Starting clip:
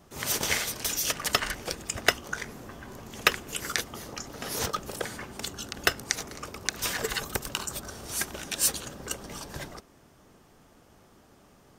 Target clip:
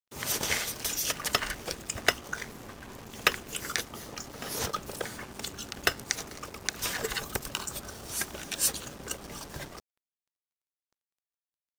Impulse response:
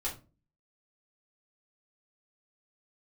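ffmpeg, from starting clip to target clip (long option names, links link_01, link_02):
-af "acrusher=bits=6:mix=0:aa=0.5,volume=-2dB"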